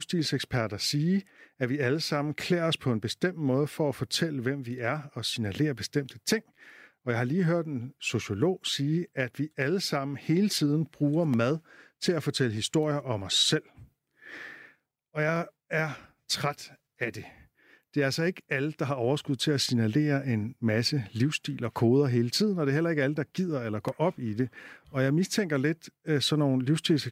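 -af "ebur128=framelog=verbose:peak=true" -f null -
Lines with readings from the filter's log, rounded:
Integrated loudness:
  I:         -28.6 LUFS
  Threshold: -39.1 LUFS
Loudness range:
  LRA:         4.8 LU
  Threshold: -49.2 LUFS
  LRA low:   -32.0 LUFS
  LRA high:  -27.3 LUFS
True peak:
  Peak:      -12.4 dBFS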